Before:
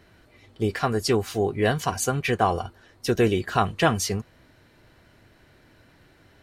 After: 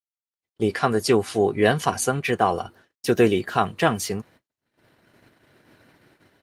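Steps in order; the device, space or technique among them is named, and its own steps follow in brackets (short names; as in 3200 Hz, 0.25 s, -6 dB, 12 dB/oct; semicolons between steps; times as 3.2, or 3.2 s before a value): video call (HPF 140 Hz 12 dB/oct; AGC gain up to 11 dB; gate -45 dBFS, range -50 dB; gain -3 dB; Opus 32 kbps 48000 Hz)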